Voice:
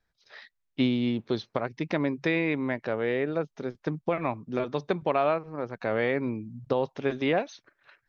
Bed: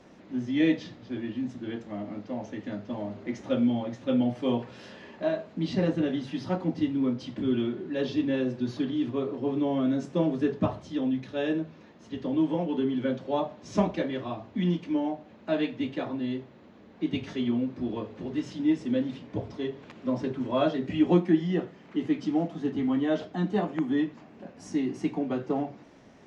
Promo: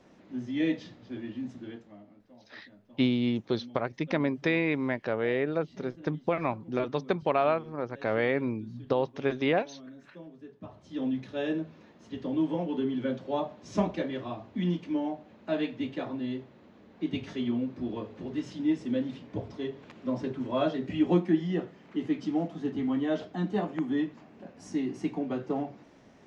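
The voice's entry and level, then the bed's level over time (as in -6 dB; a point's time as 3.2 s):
2.20 s, -0.5 dB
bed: 1.61 s -4.5 dB
2.19 s -21.5 dB
10.58 s -21.5 dB
11.02 s -2.5 dB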